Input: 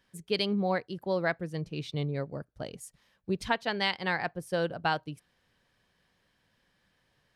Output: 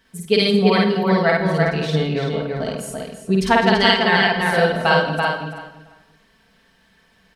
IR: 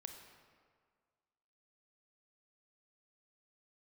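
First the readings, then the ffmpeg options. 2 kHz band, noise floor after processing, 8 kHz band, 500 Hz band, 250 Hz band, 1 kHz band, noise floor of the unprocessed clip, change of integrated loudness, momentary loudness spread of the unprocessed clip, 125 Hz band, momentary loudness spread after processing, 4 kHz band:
+15.0 dB, -58 dBFS, +13.0 dB, +14.5 dB, +15.0 dB, +14.5 dB, -73 dBFS, +14.0 dB, 14 LU, +14.0 dB, 13 LU, +14.5 dB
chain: -filter_complex "[0:a]aecho=1:1:4.5:0.64,asplit=2[s0][s1];[s1]adelay=335,lowpass=f=3600:p=1,volume=0.708,asplit=2[s2][s3];[s3]adelay=335,lowpass=f=3600:p=1,volume=0.18,asplit=2[s4][s5];[s5]adelay=335,lowpass=f=3600:p=1,volume=0.18[s6];[s0][s2][s4][s6]amix=inputs=4:normalize=0,asplit=2[s7][s8];[1:a]atrim=start_sample=2205,afade=t=out:st=0.26:d=0.01,atrim=end_sample=11907,adelay=52[s9];[s8][s9]afir=irnorm=-1:irlink=0,volume=1.78[s10];[s7][s10]amix=inputs=2:normalize=0,volume=2.66"

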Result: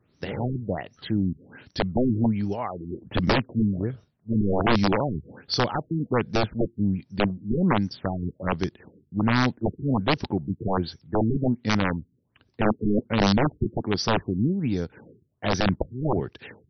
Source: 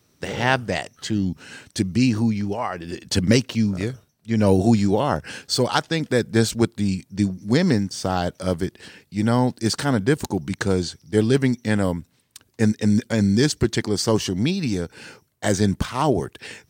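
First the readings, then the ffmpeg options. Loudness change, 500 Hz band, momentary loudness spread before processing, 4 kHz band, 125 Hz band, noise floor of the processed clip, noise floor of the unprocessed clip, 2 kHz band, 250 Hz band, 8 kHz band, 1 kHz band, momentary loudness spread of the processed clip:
-4.0 dB, -4.5 dB, 9 LU, -4.0 dB, -3.5 dB, -68 dBFS, -64 dBFS, -3.5 dB, -4.0 dB, under -10 dB, -1.0 dB, 9 LU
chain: -af "equalizer=f=1500:w=0.35:g=-4,aeval=exprs='(mod(3.98*val(0)+1,2)-1)/3.98':c=same,afftfilt=real='re*lt(b*sr/1024,420*pow(6200/420,0.5+0.5*sin(2*PI*1.3*pts/sr)))':imag='im*lt(b*sr/1024,420*pow(6200/420,0.5+0.5*sin(2*PI*1.3*pts/sr)))':win_size=1024:overlap=0.75,volume=0.891"

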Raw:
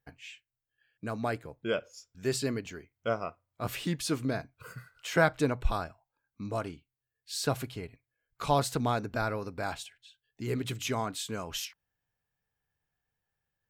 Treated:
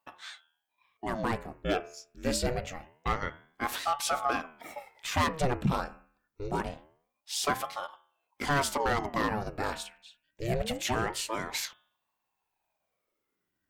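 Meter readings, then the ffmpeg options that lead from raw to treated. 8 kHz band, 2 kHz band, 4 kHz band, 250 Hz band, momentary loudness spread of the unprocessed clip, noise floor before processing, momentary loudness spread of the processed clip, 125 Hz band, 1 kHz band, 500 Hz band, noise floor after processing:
+2.5 dB, +2.0 dB, +2.0 dB, -1.0 dB, 16 LU, under -85 dBFS, 15 LU, -1.0 dB, +3.5 dB, -1.0 dB, -83 dBFS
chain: -af "asoftclip=type=hard:threshold=0.0596,bandreject=f=79.44:t=h:w=4,bandreject=f=158.88:t=h:w=4,bandreject=f=238.32:t=h:w=4,bandreject=f=317.76:t=h:w=4,bandreject=f=397.2:t=h:w=4,bandreject=f=476.64:t=h:w=4,bandreject=f=556.08:t=h:w=4,bandreject=f=635.52:t=h:w=4,bandreject=f=714.96:t=h:w=4,bandreject=f=794.4:t=h:w=4,bandreject=f=873.84:t=h:w=4,bandreject=f=953.28:t=h:w=4,bandreject=f=1032.72:t=h:w=4,bandreject=f=1112.16:t=h:w=4,bandreject=f=1191.6:t=h:w=4,bandreject=f=1271.04:t=h:w=4,bandreject=f=1350.48:t=h:w=4,bandreject=f=1429.92:t=h:w=4,bandreject=f=1509.36:t=h:w=4,bandreject=f=1588.8:t=h:w=4,bandreject=f=1668.24:t=h:w=4,bandreject=f=1747.68:t=h:w=4,bandreject=f=1827.12:t=h:w=4,bandreject=f=1906.56:t=h:w=4,bandreject=f=1986:t=h:w=4,bandreject=f=2065.44:t=h:w=4,bandreject=f=2144.88:t=h:w=4,bandreject=f=2224.32:t=h:w=4,bandreject=f=2303.76:t=h:w=4,bandreject=f=2383.2:t=h:w=4,bandreject=f=2462.64:t=h:w=4,bandreject=f=2542.08:t=h:w=4,bandreject=f=2621.52:t=h:w=4,bandreject=f=2700.96:t=h:w=4,aeval=exprs='val(0)*sin(2*PI*560*n/s+560*0.8/0.25*sin(2*PI*0.25*n/s))':c=same,volume=1.88"

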